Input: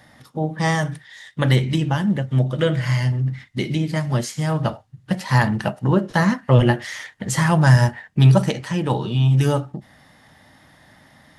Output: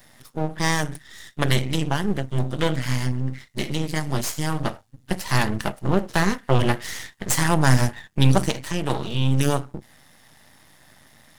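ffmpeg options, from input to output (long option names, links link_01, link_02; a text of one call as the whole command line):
ffmpeg -i in.wav -af "crystalizer=i=2:c=0,aeval=exprs='max(val(0),0)':channel_layout=same" out.wav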